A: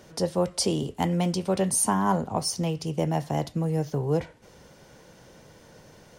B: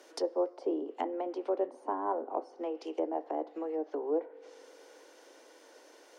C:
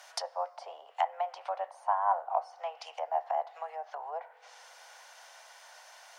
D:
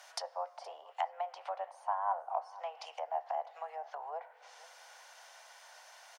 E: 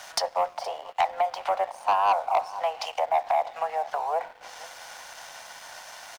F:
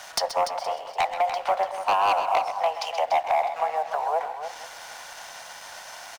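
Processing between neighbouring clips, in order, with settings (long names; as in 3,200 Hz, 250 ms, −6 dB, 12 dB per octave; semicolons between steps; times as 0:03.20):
Butterworth high-pass 280 Hz 72 dB per octave; treble cut that deepens with the level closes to 810 Hz, closed at −26.5 dBFS; on a send at −23 dB: convolution reverb RT60 3.4 s, pre-delay 3 ms; on the sum: level −3.5 dB
elliptic high-pass filter 690 Hz, stop band 50 dB; level +7.5 dB
single-tap delay 470 ms −21 dB; in parallel at −2 dB: downward compressor, threshold −35 dBFS, peak gain reduction 12.5 dB; on the sum: level −7.5 dB
leveller curve on the samples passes 2; level +7 dB
wave folding −18 dBFS; on a send: multi-tap delay 124/131/291 ms −18/−11/−9.5 dB; on the sum: level +1.5 dB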